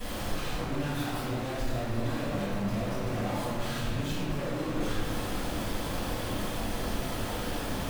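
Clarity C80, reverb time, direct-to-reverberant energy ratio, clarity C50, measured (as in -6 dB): 0.0 dB, 2.1 s, -14.0 dB, -1.5 dB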